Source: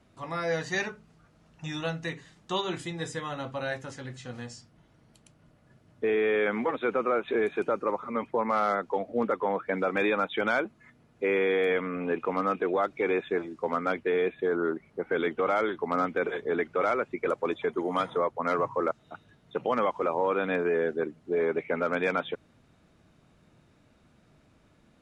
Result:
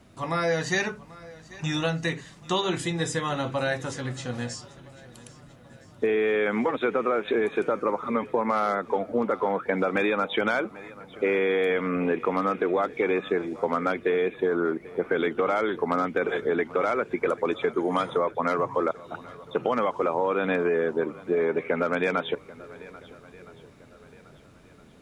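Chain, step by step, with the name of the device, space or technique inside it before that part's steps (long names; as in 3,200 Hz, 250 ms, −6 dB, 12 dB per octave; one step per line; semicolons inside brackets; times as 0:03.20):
low-shelf EQ 140 Hz −5.5 dB
ASMR close-microphone chain (low-shelf EQ 230 Hz +6 dB; downward compressor 4 to 1, threshold −28 dBFS, peak gain reduction 6.5 dB; high-shelf EQ 7,000 Hz +6 dB)
feedback echo with a long and a short gap by turns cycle 1,315 ms, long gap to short 1.5 to 1, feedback 33%, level −20 dB
level +6.5 dB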